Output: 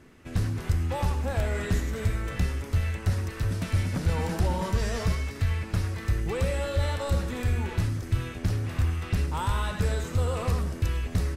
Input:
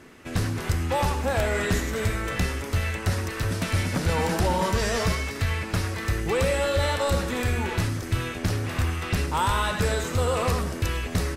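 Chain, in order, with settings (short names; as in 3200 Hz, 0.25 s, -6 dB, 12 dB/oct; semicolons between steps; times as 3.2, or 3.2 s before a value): low shelf 180 Hz +10.5 dB; gain -8 dB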